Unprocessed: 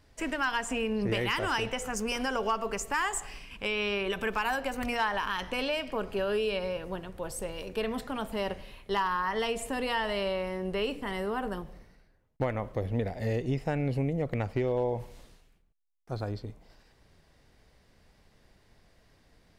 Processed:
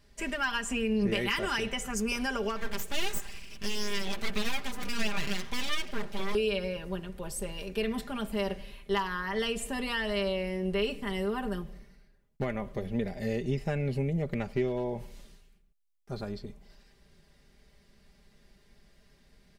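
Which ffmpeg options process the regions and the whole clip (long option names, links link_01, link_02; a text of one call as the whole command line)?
ffmpeg -i in.wav -filter_complex "[0:a]asettb=1/sr,asplit=3[link_01][link_02][link_03];[link_01]atrim=end=2.564[link_04];[link_02]atrim=start=2.56:end=6.35,asetpts=PTS-STARTPTS,afade=type=in:duration=0.004:curve=qsin,afade=type=out:start_time=3.786:duration=0.004:curve=qsin,aecho=1:1:6.3:0.35,atrim=end_sample=167139,aeval=exprs='abs(val(0))':channel_layout=same[link_05];[link_03]atrim=start=6.346[link_06];[link_04][link_05]acrossfade=duration=0.004:curve1=hsin:curve2=qsin[link_07];[link_07][link_06]acrossfade=duration=0.004:curve1=qsin:curve2=hsin,equalizer=frequency=860:width=0.86:gain=-6,aecho=1:1:5:0.65" out.wav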